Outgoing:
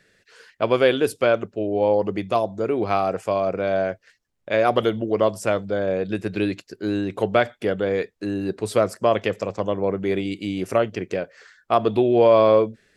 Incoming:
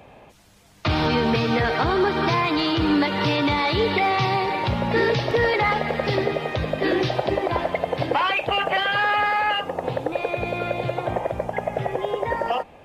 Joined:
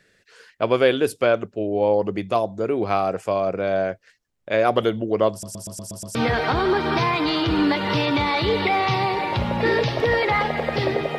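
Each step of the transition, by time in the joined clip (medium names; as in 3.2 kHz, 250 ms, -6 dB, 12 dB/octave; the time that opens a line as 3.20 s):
outgoing
5.31 s: stutter in place 0.12 s, 7 plays
6.15 s: go over to incoming from 1.46 s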